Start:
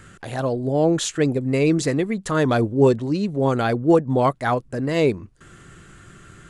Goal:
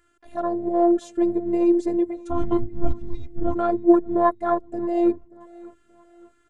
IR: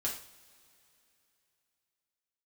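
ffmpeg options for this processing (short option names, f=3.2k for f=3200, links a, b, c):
-filter_complex "[0:a]afwtdn=0.0891,equalizer=f=560:w=0.49:g=4,asplit=3[a][b][c];[a]afade=t=out:st=2.2:d=0.02[d];[b]afreqshift=-350,afade=t=in:st=2.2:d=0.02,afade=t=out:st=3.54:d=0.02[e];[c]afade=t=in:st=3.54:d=0.02[f];[d][e][f]amix=inputs=3:normalize=0,afftfilt=real='hypot(re,im)*cos(PI*b)':imag='0':win_size=512:overlap=0.75,aecho=1:1:580|1160|1740:0.075|0.0292|0.0114"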